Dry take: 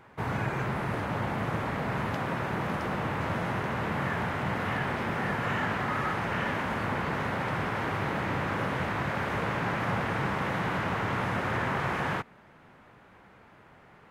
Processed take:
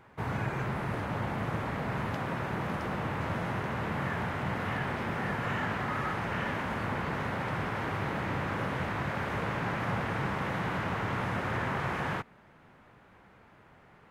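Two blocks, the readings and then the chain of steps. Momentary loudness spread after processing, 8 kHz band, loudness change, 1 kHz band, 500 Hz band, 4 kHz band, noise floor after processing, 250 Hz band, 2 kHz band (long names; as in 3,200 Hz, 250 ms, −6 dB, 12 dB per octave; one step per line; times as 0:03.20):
2 LU, −3.0 dB, −2.5 dB, −3.0 dB, −3.0 dB, −3.0 dB, −58 dBFS, −2.0 dB, −3.0 dB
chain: low-shelf EQ 120 Hz +3.5 dB
level −3 dB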